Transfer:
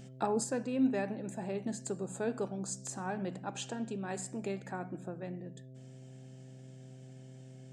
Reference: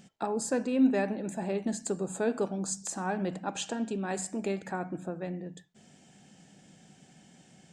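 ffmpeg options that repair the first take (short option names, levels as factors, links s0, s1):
-af "bandreject=f=129.8:t=h:w=4,bandreject=f=259.6:t=h:w=4,bandreject=f=389.4:t=h:w=4,bandreject=f=519.2:t=h:w=4,bandreject=f=649:t=h:w=4,asetnsamples=n=441:p=0,asendcmd='0.44 volume volume 5.5dB',volume=1"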